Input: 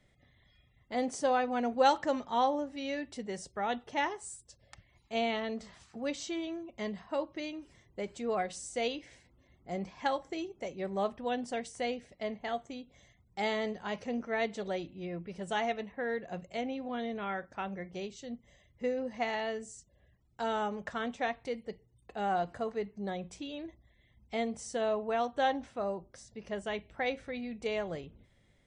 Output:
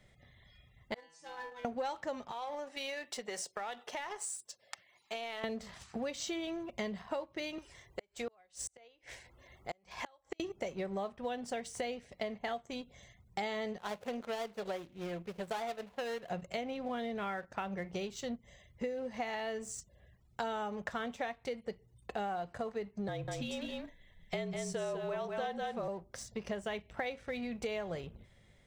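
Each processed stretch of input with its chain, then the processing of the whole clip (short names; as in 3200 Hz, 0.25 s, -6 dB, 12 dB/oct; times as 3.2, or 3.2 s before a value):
0.94–1.65 LPF 1300 Hz 6 dB/oct + tilt shelf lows -7.5 dB, about 860 Hz + metallic resonator 160 Hz, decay 0.76 s, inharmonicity 0.002
2.31–5.44 Bessel high-pass 590 Hz + compressor 12:1, threshold -42 dBFS
7.58–10.4 bell 200 Hz -12 dB 1.6 oct + flipped gate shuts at -33 dBFS, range -33 dB + three-band squash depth 40%
13.78–16.3 median filter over 25 samples + low shelf 380 Hz -11 dB
23.08–25.88 echo 0.196 s -5 dB + frequency shift -43 Hz
whole clip: bell 290 Hz -7 dB 0.38 oct; sample leveller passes 1; compressor 10:1, threshold -41 dBFS; gain +6 dB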